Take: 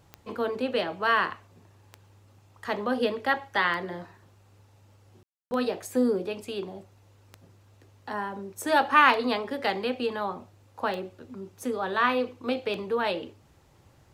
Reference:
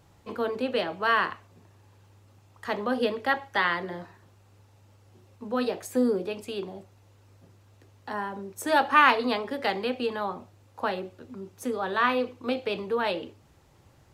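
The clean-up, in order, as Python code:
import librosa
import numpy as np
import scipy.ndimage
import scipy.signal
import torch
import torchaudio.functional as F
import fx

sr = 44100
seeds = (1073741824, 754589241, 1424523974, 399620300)

y = fx.fix_declick_ar(x, sr, threshold=10.0)
y = fx.fix_ambience(y, sr, seeds[0], print_start_s=13.47, print_end_s=13.97, start_s=5.23, end_s=5.51)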